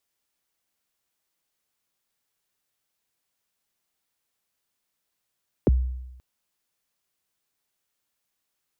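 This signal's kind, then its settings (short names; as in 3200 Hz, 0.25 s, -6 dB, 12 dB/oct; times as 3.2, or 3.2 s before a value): kick drum length 0.53 s, from 550 Hz, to 63 Hz, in 24 ms, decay 0.96 s, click off, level -13 dB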